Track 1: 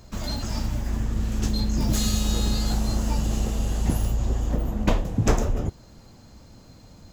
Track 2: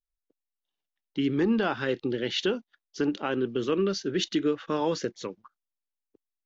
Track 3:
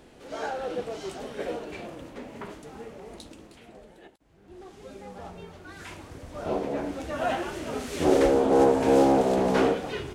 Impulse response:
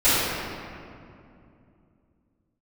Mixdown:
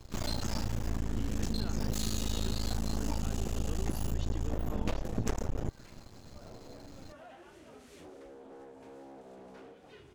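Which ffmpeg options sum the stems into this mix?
-filter_complex "[0:a]aeval=exprs='max(val(0),0)':channel_layout=same,volume=0.5dB[link_01];[1:a]volume=-15.5dB[link_02];[2:a]acompressor=threshold=-30dB:ratio=4,asoftclip=type=hard:threshold=-27.5dB,volume=-18.5dB[link_03];[link_01][link_02][link_03]amix=inputs=3:normalize=0,acompressor=threshold=-27dB:ratio=6"

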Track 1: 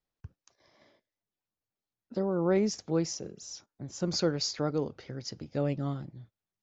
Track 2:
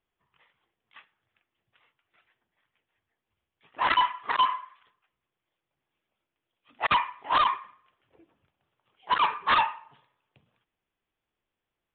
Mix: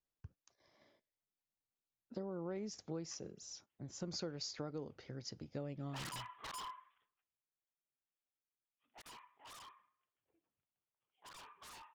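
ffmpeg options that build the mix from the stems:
ffmpeg -i stem1.wav -i stem2.wav -filter_complex "[0:a]acompressor=threshold=-32dB:ratio=6,volume=-7.5dB[link_01];[1:a]aeval=exprs='0.0422*(abs(mod(val(0)/0.0422+3,4)-2)-1)':channel_layout=same,adelay=2150,volume=-14dB,afade=type=out:start_time=6.82:duration=0.55:silence=0.354813[link_02];[link_01][link_02]amix=inputs=2:normalize=0" out.wav

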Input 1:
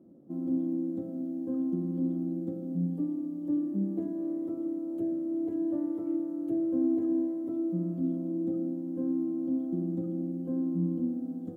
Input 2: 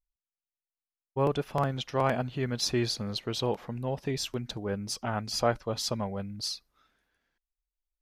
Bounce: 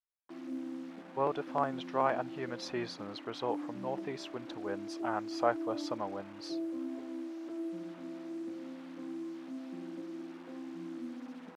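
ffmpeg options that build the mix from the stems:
ffmpeg -i stem1.wav -i stem2.wav -filter_complex "[0:a]flanger=delay=2.6:depth=6.7:regen=17:speed=0.19:shape=sinusoidal,acrusher=bits=7:mix=0:aa=0.000001,volume=0.5dB[link_01];[1:a]volume=-0.5dB[link_02];[link_01][link_02]amix=inputs=2:normalize=0,bandpass=frequency=940:width_type=q:width=0.89:csg=0" out.wav

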